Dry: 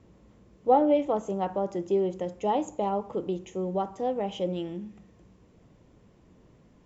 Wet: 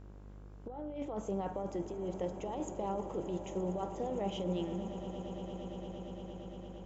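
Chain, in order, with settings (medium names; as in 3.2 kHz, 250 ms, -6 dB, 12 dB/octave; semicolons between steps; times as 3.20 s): compressor with a negative ratio -30 dBFS, ratio -1; echo with a slow build-up 115 ms, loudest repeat 8, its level -17 dB; mains buzz 50 Hz, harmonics 33, -44 dBFS -7 dB/octave; trim -7.5 dB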